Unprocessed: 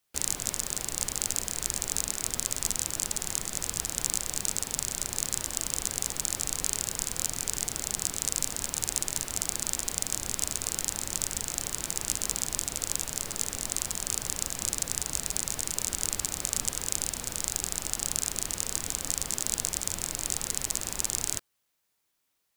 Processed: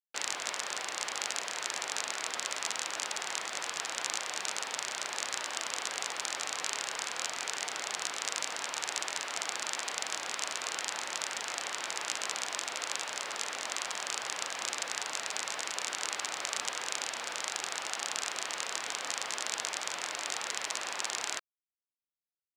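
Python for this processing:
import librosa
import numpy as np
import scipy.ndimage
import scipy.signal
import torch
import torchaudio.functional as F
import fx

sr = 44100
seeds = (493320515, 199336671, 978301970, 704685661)

y = fx.bandpass_edges(x, sr, low_hz=730.0, high_hz=3300.0)
y = fx.quant_dither(y, sr, seeds[0], bits=12, dither='none')
y = y * 10.0 ** (7.0 / 20.0)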